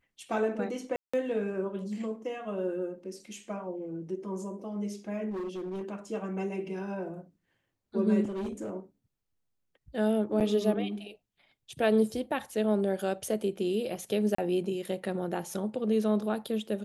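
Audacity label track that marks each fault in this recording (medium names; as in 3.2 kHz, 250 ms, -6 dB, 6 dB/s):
0.960000	1.140000	dropout 175 ms
5.300000	5.830000	clipped -32.5 dBFS
8.240000	8.700000	clipped -31 dBFS
10.400000	10.410000	dropout 7.7 ms
14.350000	14.380000	dropout 34 ms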